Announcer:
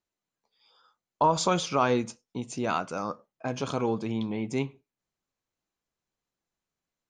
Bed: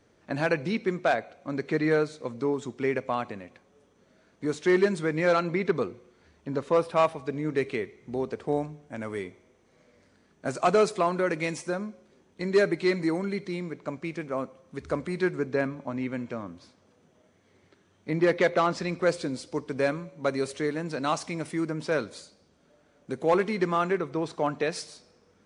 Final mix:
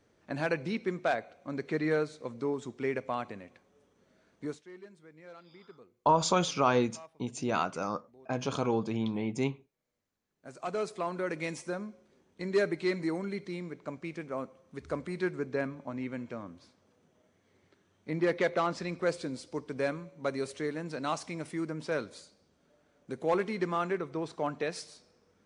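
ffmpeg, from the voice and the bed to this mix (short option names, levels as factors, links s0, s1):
-filter_complex "[0:a]adelay=4850,volume=0.841[s0];[1:a]volume=7.08,afade=t=out:st=4.4:d=0.24:silence=0.0749894,afade=t=in:st=10.23:d=1.27:silence=0.0794328[s1];[s0][s1]amix=inputs=2:normalize=0"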